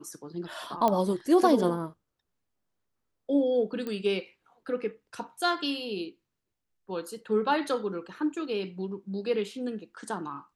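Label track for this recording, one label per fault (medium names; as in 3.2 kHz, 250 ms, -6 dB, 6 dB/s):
0.880000	0.880000	pop -13 dBFS
3.870000	3.870000	pop -22 dBFS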